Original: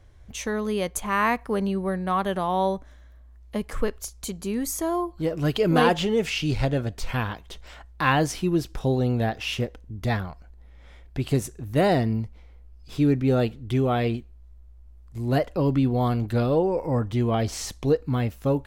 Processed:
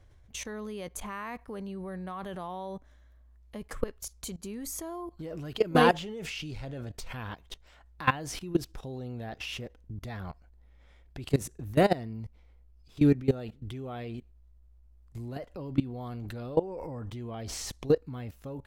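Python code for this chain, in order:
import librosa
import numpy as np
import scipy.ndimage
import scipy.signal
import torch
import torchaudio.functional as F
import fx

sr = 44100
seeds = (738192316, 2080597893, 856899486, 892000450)

y = fx.level_steps(x, sr, step_db=19)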